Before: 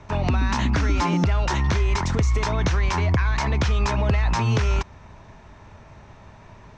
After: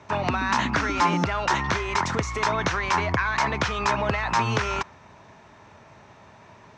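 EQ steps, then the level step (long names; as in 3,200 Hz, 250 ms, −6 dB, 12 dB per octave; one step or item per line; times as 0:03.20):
dynamic equaliser 1,300 Hz, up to +6 dB, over −39 dBFS, Q 0.86
high-pass filter 99 Hz 12 dB per octave
low-shelf EQ 210 Hz −7 dB
0.0 dB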